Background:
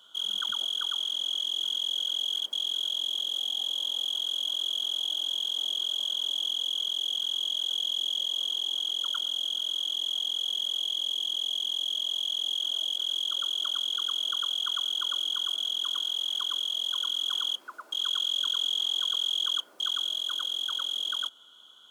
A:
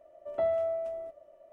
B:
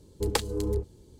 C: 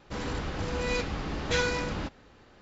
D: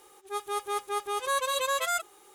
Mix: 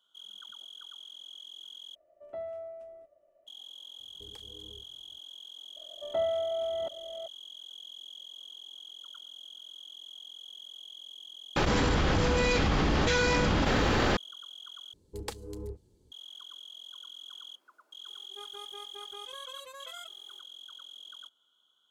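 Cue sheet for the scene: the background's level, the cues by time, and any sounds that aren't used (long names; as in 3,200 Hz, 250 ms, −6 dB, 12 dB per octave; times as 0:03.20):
background −17 dB
0:01.95: overwrite with A −10.5 dB + parametric band 930 Hz −4.5 dB 0.22 octaves
0:04.00: mix in B −18 dB + downward compressor 4 to 1, threshold −32 dBFS
0:05.76: mix in A −1 dB + delay that plays each chunk backwards 376 ms, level −6 dB
0:11.56: mix in C −1 dB + envelope flattener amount 100%
0:14.93: overwrite with B −11.5 dB
0:18.06: mix in D −10.5 dB + downward compressor, threshold −33 dBFS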